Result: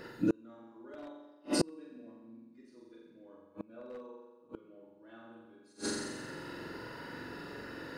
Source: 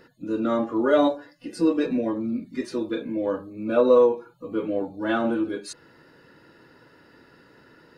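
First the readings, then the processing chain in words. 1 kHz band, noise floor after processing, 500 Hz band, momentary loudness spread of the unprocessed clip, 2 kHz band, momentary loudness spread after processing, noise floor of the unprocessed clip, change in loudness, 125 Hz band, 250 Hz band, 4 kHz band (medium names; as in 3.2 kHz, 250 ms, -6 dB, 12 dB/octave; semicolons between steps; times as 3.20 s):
-17.5 dB, -61 dBFS, -20.5 dB, 13 LU, -10.5 dB, 23 LU, -56 dBFS, -15.5 dB, -6.0 dB, -14.0 dB, -4.5 dB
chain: flutter echo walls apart 7.6 m, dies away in 1.2 s; wavefolder -8 dBFS; inverted gate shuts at -22 dBFS, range -37 dB; trim +5 dB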